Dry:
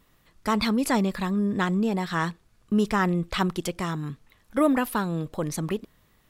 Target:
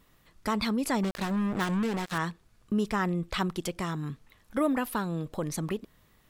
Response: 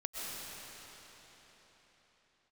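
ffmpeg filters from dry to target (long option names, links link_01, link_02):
-filter_complex "[0:a]asplit=2[link_01][link_02];[link_02]acompressor=threshold=-31dB:ratio=10,volume=2dB[link_03];[link_01][link_03]amix=inputs=2:normalize=0,asettb=1/sr,asplit=3[link_04][link_05][link_06];[link_04]atrim=end=1.034[link_07];[link_05]atrim=start=1.03:end=2.18,asetpts=PTS-STARTPTS,afade=type=in:duration=0.004:curve=qsin,afade=type=out:start_time=1.146:duration=0.004:curve=qsin,acrusher=bits=3:mix=0:aa=0.5[link_08];[link_06]atrim=start=2.176[link_09];[link_07][link_08]acrossfade=duration=0.004:curve1=hsin:curve2=qsin[link_10];[link_10][link_09]acrossfade=duration=0.004:curve1=qsin:curve2=hsin,volume=-7.5dB"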